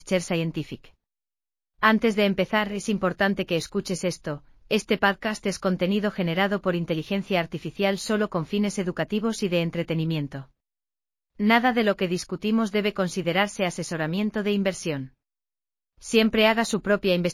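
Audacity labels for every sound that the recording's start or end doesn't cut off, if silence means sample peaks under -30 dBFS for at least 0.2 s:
1.830000	4.360000	sound
4.710000	10.400000	sound
11.400000	15.040000	sound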